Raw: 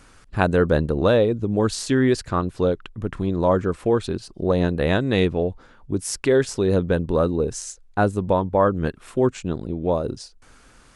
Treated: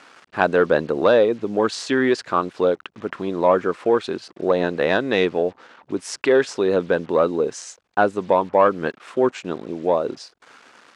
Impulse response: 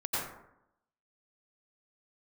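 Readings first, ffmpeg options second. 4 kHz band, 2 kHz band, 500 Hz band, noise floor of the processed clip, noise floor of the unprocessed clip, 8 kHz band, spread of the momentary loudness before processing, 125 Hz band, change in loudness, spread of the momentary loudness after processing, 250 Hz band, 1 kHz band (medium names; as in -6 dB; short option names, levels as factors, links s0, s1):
+1.5 dB, +4.5 dB, +2.5 dB, -61 dBFS, -52 dBFS, -4.0 dB, 9 LU, -11.0 dB, +1.0 dB, 12 LU, -2.0 dB, +4.0 dB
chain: -filter_complex "[0:a]acrusher=bits=7:mix=0:aa=0.5,asplit=2[s0][s1];[s1]highpass=f=720:p=1,volume=3.55,asoftclip=type=tanh:threshold=0.708[s2];[s0][s2]amix=inputs=2:normalize=0,lowpass=f=2400:p=1,volume=0.501,highpass=220,lowpass=7600,volume=1.12"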